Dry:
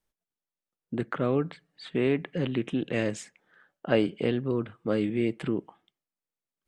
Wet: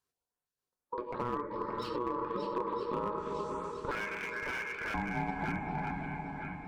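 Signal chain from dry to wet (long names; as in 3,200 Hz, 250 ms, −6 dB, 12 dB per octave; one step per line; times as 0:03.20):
convolution reverb RT60 3.4 s, pre-delay 4 ms, DRR 3 dB
treble cut that deepens with the level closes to 1,400 Hz, closed at −23.5 dBFS
graphic EQ with 10 bands 250 Hz +6 dB, 1,000 Hz +4 dB, 2,000 Hz −12 dB, 4,000 Hz +4 dB
downward compressor 6 to 1, threshold −28 dBFS, peak gain reduction 13.5 dB
low-shelf EQ 110 Hz −8 dB
notch filter 1,300 Hz, Q 14
ring modulation 730 Hz, from 0:03.91 1,900 Hz, from 0:04.94 510 Hz
auto-filter notch saw up 2.2 Hz 520–6,500 Hz
feedback echo with a long and a short gap by turns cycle 965 ms, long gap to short 1.5 to 1, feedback 48%, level −7.5 dB
slew-rate limiting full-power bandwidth 32 Hz
level +1 dB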